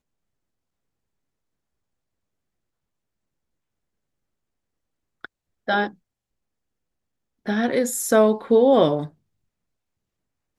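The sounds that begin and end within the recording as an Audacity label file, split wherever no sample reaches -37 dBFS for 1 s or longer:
5.240000	5.900000	sound
7.460000	9.080000	sound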